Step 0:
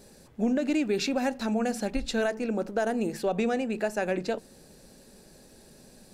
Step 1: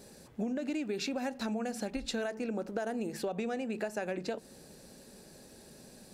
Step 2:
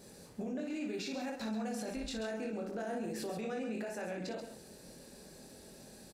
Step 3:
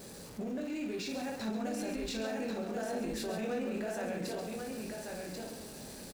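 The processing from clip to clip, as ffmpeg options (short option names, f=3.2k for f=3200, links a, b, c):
-af "highpass=f=62:p=1,acompressor=threshold=-32dB:ratio=6"
-filter_complex "[0:a]asplit=2[a][b];[b]aecho=0:1:23|60:0.708|0.531[c];[a][c]amix=inputs=2:normalize=0,alimiter=level_in=5dB:limit=-24dB:level=0:latency=1:release=35,volume=-5dB,asplit=2[d][e];[e]aecho=0:1:134:0.355[f];[d][f]amix=inputs=2:normalize=0,volume=-3dB"
-af "aeval=exprs='val(0)+0.5*0.00422*sgn(val(0))':c=same,aeval=exprs='val(0)+0.000501*(sin(2*PI*50*n/s)+sin(2*PI*2*50*n/s)/2+sin(2*PI*3*50*n/s)/3+sin(2*PI*4*50*n/s)/4+sin(2*PI*5*50*n/s)/5)':c=same,aecho=1:1:1089:0.631"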